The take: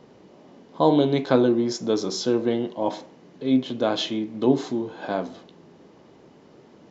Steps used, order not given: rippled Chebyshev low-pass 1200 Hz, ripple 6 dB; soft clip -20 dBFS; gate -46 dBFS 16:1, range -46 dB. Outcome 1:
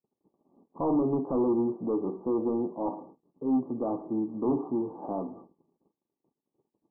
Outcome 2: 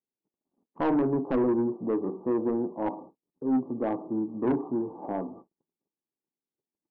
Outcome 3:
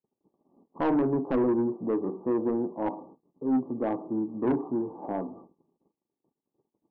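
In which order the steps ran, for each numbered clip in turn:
soft clip > gate > rippled Chebyshev low-pass; rippled Chebyshev low-pass > soft clip > gate; gate > rippled Chebyshev low-pass > soft clip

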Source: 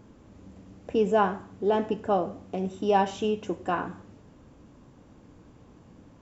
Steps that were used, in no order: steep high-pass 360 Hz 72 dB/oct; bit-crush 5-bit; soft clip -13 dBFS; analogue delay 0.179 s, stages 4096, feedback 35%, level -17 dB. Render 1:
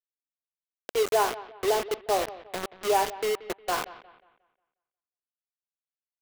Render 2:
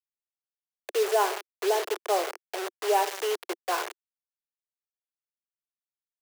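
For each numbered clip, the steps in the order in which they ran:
soft clip > steep high-pass > bit-crush > analogue delay; analogue delay > bit-crush > soft clip > steep high-pass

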